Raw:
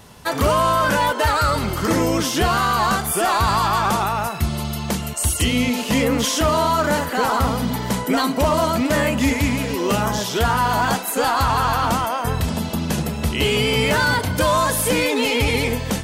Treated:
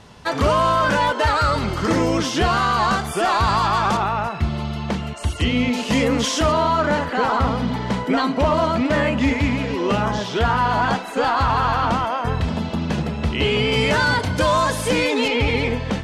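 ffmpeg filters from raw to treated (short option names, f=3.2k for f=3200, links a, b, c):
-af "asetnsamples=n=441:p=0,asendcmd='3.97 lowpass f 3300;5.73 lowpass f 6800;6.52 lowpass f 3700;13.72 lowpass f 6400;15.28 lowpass f 3500',lowpass=5.7k"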